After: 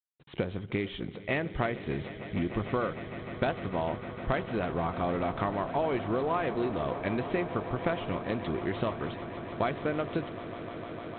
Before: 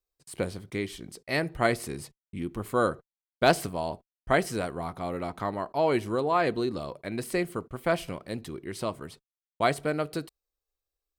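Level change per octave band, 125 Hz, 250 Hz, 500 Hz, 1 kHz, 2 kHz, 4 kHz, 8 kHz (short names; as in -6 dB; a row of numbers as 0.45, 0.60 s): +1.0 dB, 0.0 dB, -2.5 dB, -3.0 dB, -3.5 dB, -5.5 dB, under -35 dB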